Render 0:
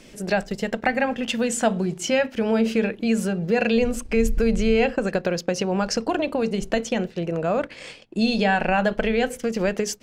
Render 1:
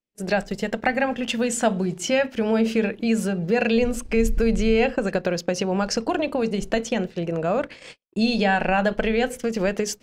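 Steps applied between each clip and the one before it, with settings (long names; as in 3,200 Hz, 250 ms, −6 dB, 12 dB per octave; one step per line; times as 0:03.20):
noise gate −38 dBFS, range −45 dB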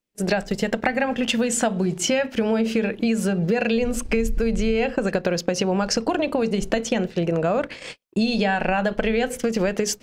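downward compressor, threshold −24 dBFS, peak gain reduction 9.5 dB
level +6 dB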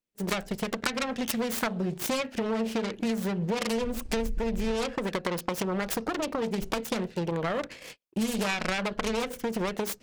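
phase distortion by the signal itself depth 0.68 ms
level −7 dB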